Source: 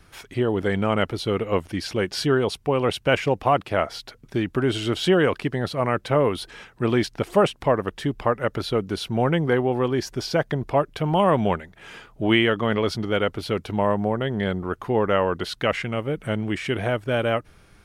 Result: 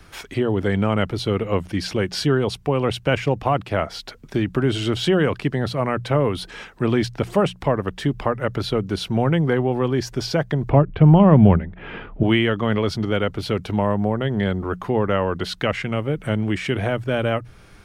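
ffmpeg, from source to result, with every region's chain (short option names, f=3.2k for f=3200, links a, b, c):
-filter_complex "[0:a]asettb=1/sr,asplit=3[a][b][c];[a]atrim=end=10.694[d];[b]atrim=start=10.69:end=12.23,asetpts=PTS-STARTPTS,afade=t=in:d=0.004:c=qsin,afade=t=out:st=1.536:d=0.004:c=qsin,lowpass=f=3k:w=0.5412,lowpass=f=3k:w=1.3066,lowshelf=f=480:g=10.5[e];[c]atrim=start=12.226[f];[d][e]acrossfade=d=0.004:c1=hsin:c2=qsin[g];[g][f]acrossfade=d=0.004:c1=qsin:c2=hsin,acrossover=split=210[h][i];[i]acompressor=threshold=-36dB:ratio=1.5[j];[h][j]amix=inputs=2:normalize=0,equalizer=f=11k:t=o:w=0.47:g=-4,bandreject=f=60:t=h:w=6,bandreject=f=120:t=h:w=6,bandreject=f=180:t=h:w=6,volume=6dB"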